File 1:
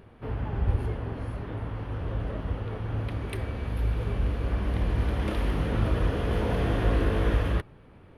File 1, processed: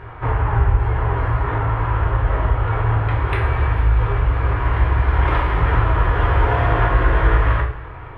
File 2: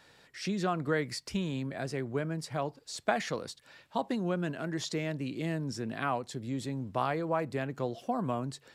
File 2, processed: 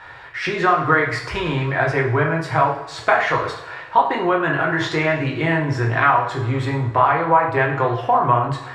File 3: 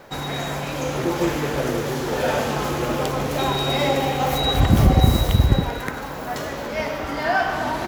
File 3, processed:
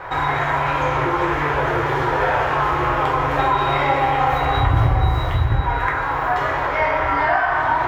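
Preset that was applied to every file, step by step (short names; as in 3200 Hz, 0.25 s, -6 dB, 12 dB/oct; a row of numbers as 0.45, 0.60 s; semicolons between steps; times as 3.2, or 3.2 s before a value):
EQ curve 120 Hz 0 dB, 220 Hz -23 dB, 320 Hz -4 dB, 550 Hz -6 dB, 1000 Hz +6 dB, 1800 Hz +3 dB, 5200 Hz -16 dB, 10000 Hz -22 dB; compressor 2.5:1, threshold -34 dBFS; two-slope reverb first 0.54 s, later 2.2 s, from -18 dB, DRR -2 dB; match loudness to -19 LUFS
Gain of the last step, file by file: +14.5, +16.5, +10.0 dB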